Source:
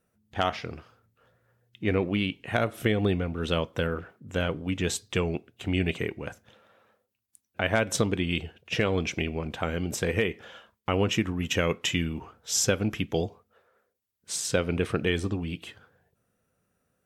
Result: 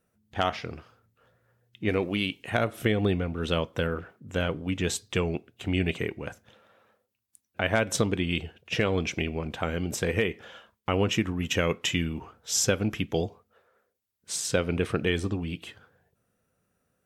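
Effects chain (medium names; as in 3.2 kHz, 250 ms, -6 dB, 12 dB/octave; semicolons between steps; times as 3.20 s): 1.89–2.50 s: tone controls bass -4 dB, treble +9 dB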